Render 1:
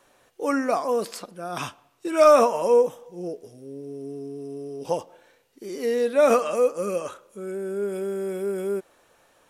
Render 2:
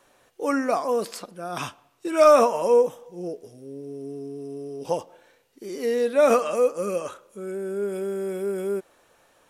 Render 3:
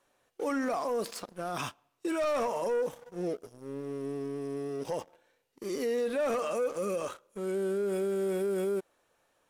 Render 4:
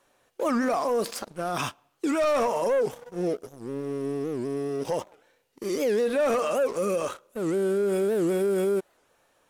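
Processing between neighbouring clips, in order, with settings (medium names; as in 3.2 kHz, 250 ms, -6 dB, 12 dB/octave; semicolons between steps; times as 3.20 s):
no audible change
waveshaping leveller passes 2; peak limiter -17 dBFS, peak gain reduction 11.5 dB; trim -8 dB
warped record 78 rpm, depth 250 cents; trim +6 dB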